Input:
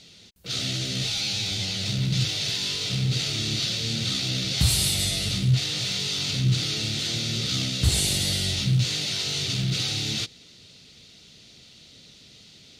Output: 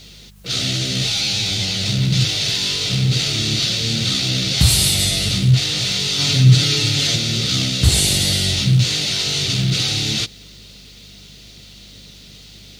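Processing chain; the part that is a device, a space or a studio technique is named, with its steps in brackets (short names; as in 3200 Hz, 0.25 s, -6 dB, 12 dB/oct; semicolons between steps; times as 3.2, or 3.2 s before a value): 6.18–7.16 comb 7.1 ms, depth 87%; video cassette with head-switching buzz (buzz 50 Hz, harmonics 4, -54 dBFS; white noise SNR 39 dB); gain +7.5 dB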